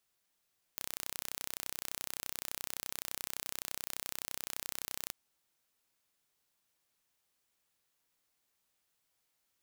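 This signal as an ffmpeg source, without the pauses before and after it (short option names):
-f lavfi -i "aevalsrc='0.282*eq(mod(n,1391),0)':d=4.33:s=44100"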